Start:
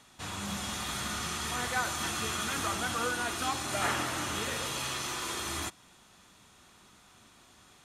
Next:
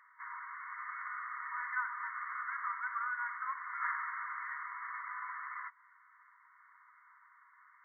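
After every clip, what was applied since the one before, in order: in parallel at +1 dB: compressor, threshold -42 dBFS, peak gain reduction 15 dB; on the sum: FFT band-pass 940–2200 Hz; gain -4.5 dB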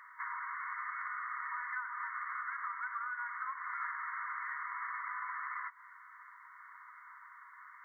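compressor 6:1, threshold -46 dBFS, peak gain reduction 14.5 dB; gain +8.5 dB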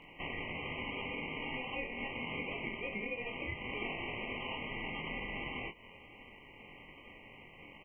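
early reflections 23 ms -3.5 dB, 39 ms -8 dB; ring modulator 970 Hz; gain +1 dB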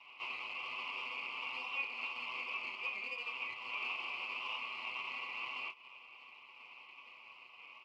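minimum comb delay 8 ms; double band-pass 1700 Hz, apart 1.2 oct; gain +8.5 dB

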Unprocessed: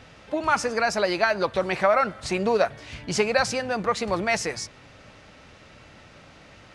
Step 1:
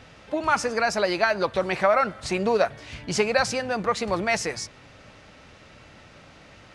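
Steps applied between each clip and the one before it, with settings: nothing audible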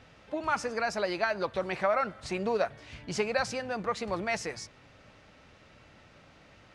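high shelf 5900 Hz -4.5 dB; gain -7 dB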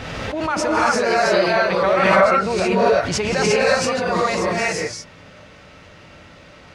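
reverb, pre-delay 0.126 s, DRR -7 dB; backwards sustainer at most 23 dB/s; gain +4.5 dB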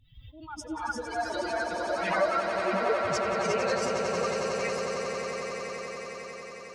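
per-bin expansion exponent 3; swelling echo 91 ms, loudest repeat 8, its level -8.5 dB; gain -8.5 dB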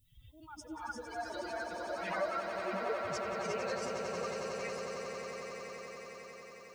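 added noise violet -68 dBFS; gain -9 dB

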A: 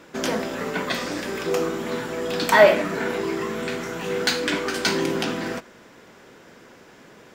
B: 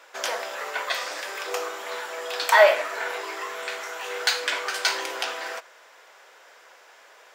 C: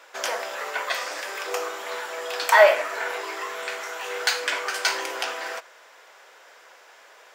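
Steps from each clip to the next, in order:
HPF 590 Hz 24 dB/oct
dynamic EQ 3800 Hz, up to -4 dB, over -42 dBFS, Q 2.8; gain +1 dB

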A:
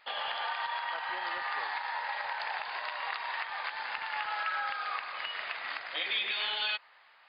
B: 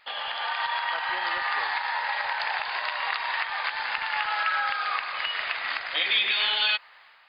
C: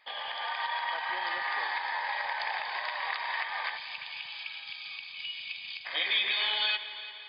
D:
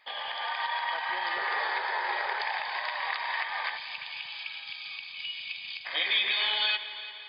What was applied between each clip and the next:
tilt shelf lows -4 dB, about 780 Hz; AGC gain up to 5 dB; low shelf 190 Hz +11.5 dB
notch comb 1400 Hz; spectral gain 3.77–5.86, 220–2200 Hz -25 dB; multi-head echo 0.172 s, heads first and second, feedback 58%, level -17 dB; gain -4 dB
painted sound noise, 1.36–2.42, 360–1800 Hz -41 dBFS; gain +1.5 dB

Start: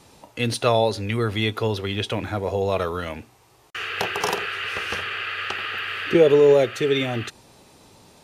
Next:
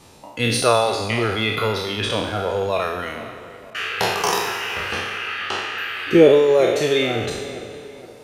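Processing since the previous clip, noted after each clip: spectral trails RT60 2.54 s; reverb removal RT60 1.2 s; tape echo 0.466 s, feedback 52%, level -15.5 dB, low-pass 2400 Hz; gain +1.5 dB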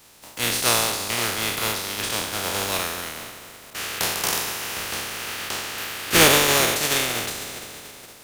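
spectral contrast lowered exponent 0.28; gain -3.5 dB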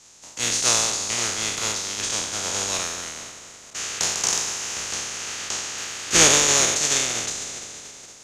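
synth low-pass 6700 Hz, resonance Q 5.1; gain -4 dB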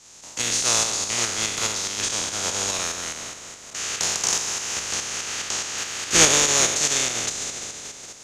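in parallel at -2 dB: compressor, threshold -30 dBFS, peak gain reduction 18 dB; on the sum: tremolo saw up 4.8 Hz, depth 45%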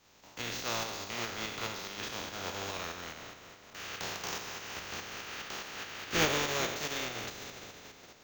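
air absorption 190 m; flange 0.27 Hz, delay 9.7 ms, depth 5.9 ms, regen -61%; careless resampling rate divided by 2×, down filtered, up hold; gain -3 dB

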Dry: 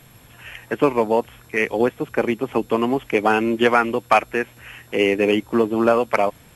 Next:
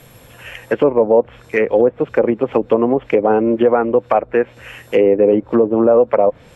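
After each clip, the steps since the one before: treble ducked by the level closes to 820 Hz, closed at -15 dBFS; bell 520 Hz +9.5 dB 0.43 oct; limiter -7.5 dBFS, peak gain reduction 6.5 dB; gain +4 dB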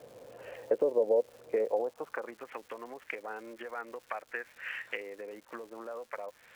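compressor 4:1, threshold -24 dBFS, peak gain reduction 14 dB; band-pass sweep 510 Hz -> 1800 Hz, 1.53–2.47; crackle 340/s -47 dBFS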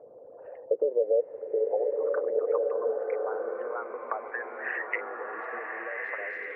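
formant sharpening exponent 2; low-pass sweep 1100 Hz -> 4300 Hz, 3.97–6.3; bloom reverb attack 1.56 s, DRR -0.5 dB

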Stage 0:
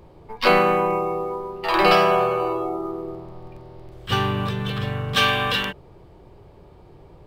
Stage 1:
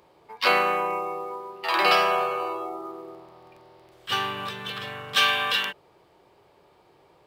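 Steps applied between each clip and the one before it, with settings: HPF 1100 Hz 6 dB/oct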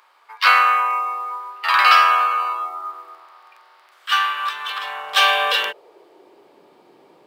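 in parallel at -6 dB: hard clip -17 dBFS, distortion -14 dB; on the sum: high-pass sweep 1300 Hz -> 240 Hz, 4.37–6.67; gain +1 dB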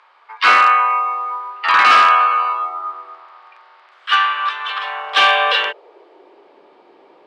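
in parallel at -6.5 dB: wrapped overs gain 7.5 dB; on the sum: BPF 320–3500 Hz; gain +1 dB

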